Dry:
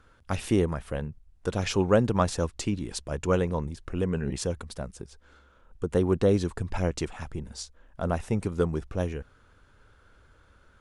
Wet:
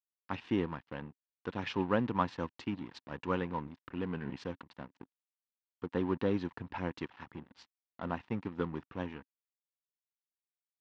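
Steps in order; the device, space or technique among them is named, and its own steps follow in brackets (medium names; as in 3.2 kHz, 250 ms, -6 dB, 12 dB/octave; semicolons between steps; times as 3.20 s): blown loudspeaker (crossover distortion -41 dBFS; cabinet simulation 130–4100 Hz, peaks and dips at 270 Hz +5 dB, 420 Hz -4 dB, 620 Hz -6 dB, 960 Hz +8 dB, 1.8 kHz +5 dB, 2.8 kHz +3 dB); trim -7 dB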